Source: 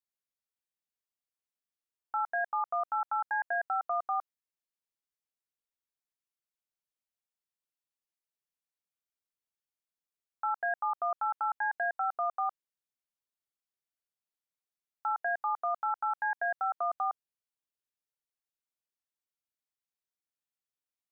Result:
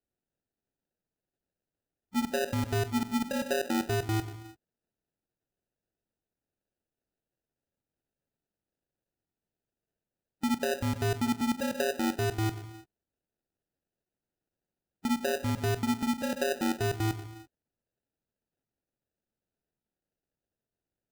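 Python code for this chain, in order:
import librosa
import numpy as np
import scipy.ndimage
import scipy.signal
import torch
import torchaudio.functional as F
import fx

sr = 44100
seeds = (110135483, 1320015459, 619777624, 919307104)

y = fx.spec_quant(x, sr, step_db=15)
y = fx.rev_gated(y, sr, seeds[0], gate_ms=370, shape='falling', drr_db=7.0)
y = fx.sample_hold(y, sr, seeds[1], rate_hz=1100.0, jitter_pct=0)
y = y * librosa.db_to_amplitude(1.5)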